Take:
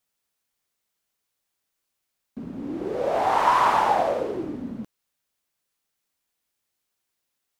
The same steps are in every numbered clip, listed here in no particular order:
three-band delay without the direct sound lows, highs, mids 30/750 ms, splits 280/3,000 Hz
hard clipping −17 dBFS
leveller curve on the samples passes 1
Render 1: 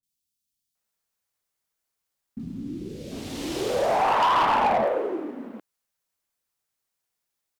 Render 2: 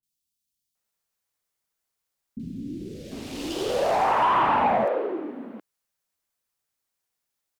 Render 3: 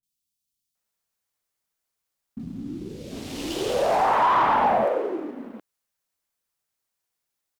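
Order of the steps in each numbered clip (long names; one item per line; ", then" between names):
three-band delay without the direct sound, then hard clipping, then leveller curve on the samples
hard clipping, then leveller curve on the samples, then three-band delay without the direct sound
hard clipping, then three-band delay without the direct sound, then leveller curve on the samples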